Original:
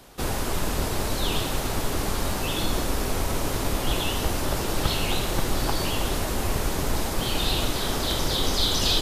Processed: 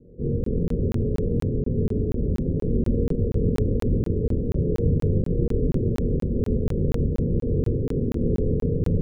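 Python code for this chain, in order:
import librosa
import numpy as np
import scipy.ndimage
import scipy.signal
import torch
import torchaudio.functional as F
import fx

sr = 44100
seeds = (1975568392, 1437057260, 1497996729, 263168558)

y = fx.lower_of_two(x, sr, delay_ms=0.74)
y = fx.hum_notches(y, sr, base_hz=60, count=6)
y = fx.quant_dither(y, sr, seeds[0], bits=8, dither='triangular')
y = scipy.signal.sosfilt(scipy.signal.cheby1(6, 3, 560.0, 'lowpass', fs=sr, output='sos'), y)
y = fx.echo_diffused(y, sr, ms=660, feedback_pct=44, wet_db=-15.5)
y = fx.rev_fdn(y, sr, rt60_s=0.81, lf_ratio=1.4, hf_ratio=0.6, size_ms=13.0, drr_db=-3.5)
y = fx.buffer_crackle(y, sr, first_s=0.44, period_s=0.24, block=1024, kind='zero')
y = y * 10.0 ** (3.5 / 20.0)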